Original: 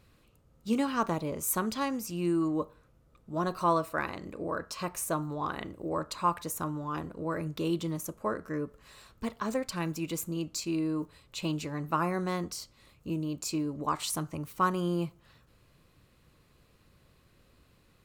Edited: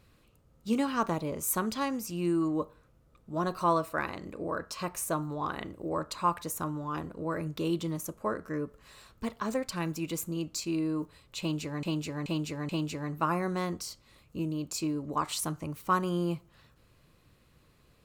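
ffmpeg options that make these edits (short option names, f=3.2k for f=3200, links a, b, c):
-filter_complex "[0:a]asplit=4[a][b][c][d];[a]atrim=end=11.832[e];[b]atrim=start=11.398:end=11.832[f];[c]atrim=start=11.398:end=11.832[g];[d]atrim=start=11.398[h];[e][f]acrossfade=d=0.004:c1=hsin:c2=hsin[i];[i][g]acrossfade=d=0.004:c1=hsin:c2=hsin[j];[j][h]acrossfade=d=0.004:c1=hsin:c2=hsin"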